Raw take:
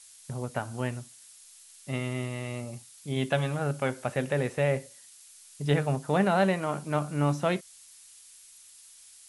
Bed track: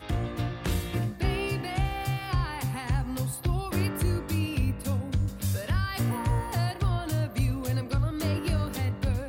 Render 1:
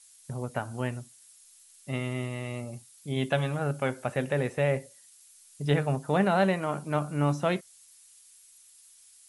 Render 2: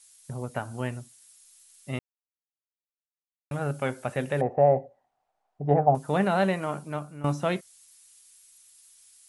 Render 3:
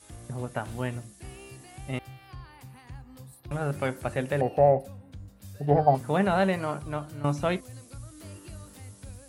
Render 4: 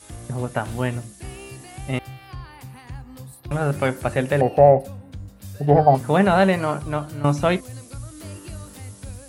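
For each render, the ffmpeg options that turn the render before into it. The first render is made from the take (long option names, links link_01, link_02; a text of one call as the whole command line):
ffmpeg -i in.wav -af "afftdn=noise_reduction=6:noise_floor=-53" out.wav
ffmpeg -i in.wav -filter_complex "[0:a]asettb=1/sr,asplit=3[link_01][link_02][link_03];[link_01]atrim=end=4.414[link_04];[link_02]atrim=start=4.41:end=5.95,asetpts=PTS-STARTPTS,afade=type=in:duration=0.004:curve=qsin,afade=type=out:start_time=1.536:duration=0.004:curve=qsin,lowpass=frequency=750:width_type=q:width=8.5[link_05];[link_03]atrim=start=5.946[link_06];[link_04][link_05]acrossfade=duration=0.004:curve1=hsin:curve2=qsin[link_07];[link_07][link_06]acrossfade=duration=0.004:curve1=qsin:curve2=hsin,asplit=4[link_08][link_09][link_10][link_11];[link_08]atrim=end=1.99,asetpts=PTS-STARTPTS,afade=type=out:start_time=1.986:duration=0.004:curve=hsin[link_12];[link_09]atrim=start=1.99:end=3.51,asetpts=PTS-STARTPTS,volume=0[link_13];[link_10]atrim=start=3.51:end=7.24,asetpts=PTS-STARTPTS,afade=type=in:duration=0.004:curve=hsin,afade=type=out:start_time=3.16:duration=0.57:silence=0.158489[link_14];[link_11]atrim=start=7.24,asetpts=PTS-STARTPTS,afade=type=in:duration=0.004:curve=hsin:silence=0.158489[link_15];[link_12][link_13][link_14][link_15]concat=n=4:v=0:a=1" out.wav
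ffmpeg -i in.wav -i bed.wav -filter_complex "[1:a]volume=-16.5dB[link_01];[0:a][link_01]amix=inputs=2:normalize=0" out.wav
ffmpeg -i in.wav -af "volume=7.5dB,alimiter=limit=-2dB:level=0:latency=1" out.wav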